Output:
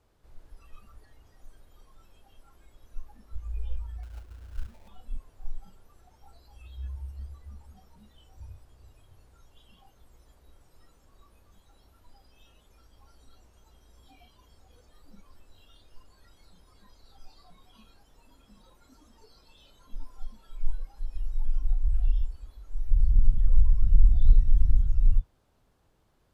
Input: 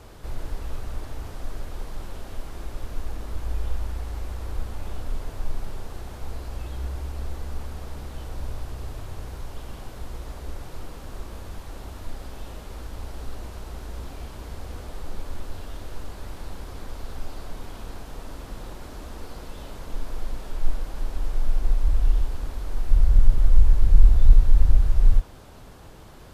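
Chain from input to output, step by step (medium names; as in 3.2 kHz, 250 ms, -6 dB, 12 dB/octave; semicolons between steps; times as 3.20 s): spectral noise reduction 18 dB; 4.03–4.88 s: sample-rate reducer 1.5 kHz, jitter 20%; trim -4.5 dB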